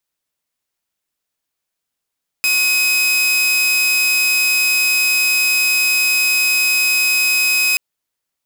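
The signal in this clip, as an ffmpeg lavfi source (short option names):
-f lavfi -i "aevalsrc='0.299*(2*mod(2530*t,1)-1)':d=5.33:s=44100"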